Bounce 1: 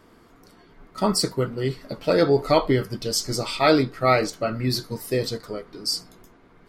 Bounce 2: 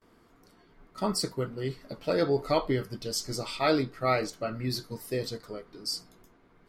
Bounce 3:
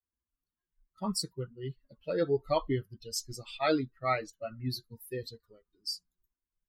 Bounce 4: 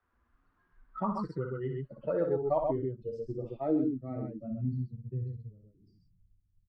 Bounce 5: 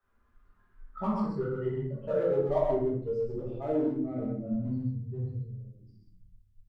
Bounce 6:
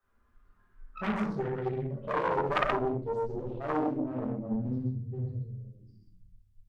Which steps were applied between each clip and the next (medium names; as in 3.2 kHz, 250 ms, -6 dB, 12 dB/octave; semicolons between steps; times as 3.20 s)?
gate with hold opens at -48 dBFS; trim -7.5 dB
expander on every frequency bin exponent 2
loudspeakers at several distances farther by 20 m -6 dB, 44 m -4 dB; low-pass sweep 1.4 kHz -> 120 Hz, 1.73–5.34 s; three bands compressed up and down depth 70%; trim -2.5 dB
in parallel at -8.5 dB: hard clipper -33 dBFS, distortion -7 dB; on the sum: simulated room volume 80 m³, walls mixed, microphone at 1.3 m; trim -6.5 dB
self-modulated delay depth 0.94 ms